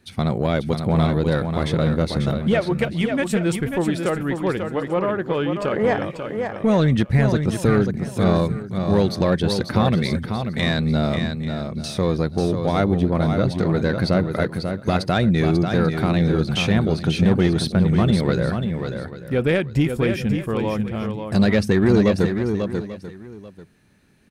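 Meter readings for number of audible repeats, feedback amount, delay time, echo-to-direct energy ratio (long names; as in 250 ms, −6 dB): 3, repeats not evenly spaced, 541 ms, −6.0 dB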